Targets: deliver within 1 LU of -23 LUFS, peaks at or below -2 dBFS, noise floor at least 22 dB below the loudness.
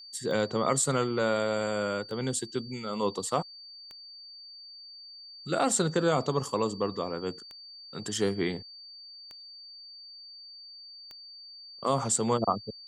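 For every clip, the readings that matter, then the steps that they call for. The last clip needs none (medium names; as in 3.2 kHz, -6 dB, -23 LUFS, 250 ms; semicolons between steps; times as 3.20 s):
clicks found 7; steady tone 4.6 kHz; tone level -45 dBFS; loudness -29.5 LUFS; peak level -12.5 dBFS; loudness target -23.0 LUFS
-> de-click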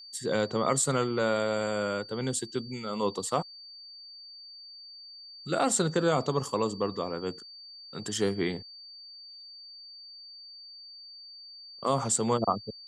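clicks found 0; steady tone 4.6 kHz; tone level -45 dBFS
-> band-stop 4.6 kHz, Q 30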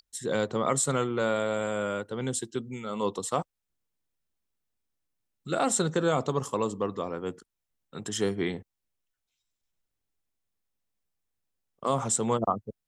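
steady tone not found; loudness -29.5 LUFS; peak level -12.5 dBFS; loudness target -23.0 LUFS
-> trim +6.5 dB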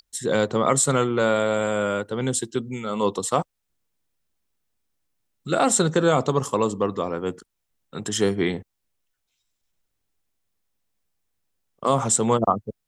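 loudness -23.0 LUFS; peak level -6.0 dBFS; noise floor -78 dBFS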